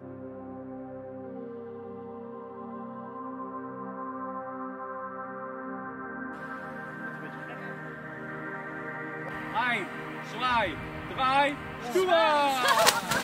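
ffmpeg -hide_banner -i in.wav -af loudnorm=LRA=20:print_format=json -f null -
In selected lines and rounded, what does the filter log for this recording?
"input_i" : "-28.3",
"input_tp" : "-4.6",
"input_lra" : "14.5",
"input_thresh" : "-39.3",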